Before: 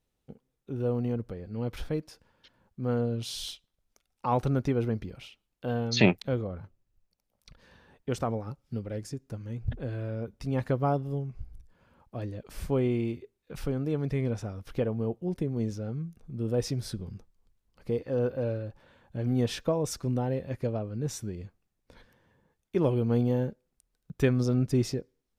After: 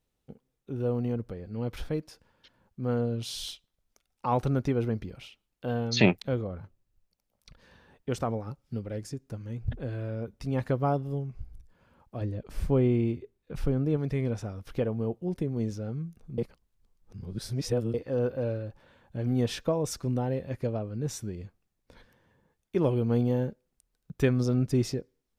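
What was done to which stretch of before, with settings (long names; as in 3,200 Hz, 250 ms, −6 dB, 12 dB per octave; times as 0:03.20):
0:12.21–0:13.97: spectral tilt −1.5 dB per octave
0:16.38–0:17.94: reverse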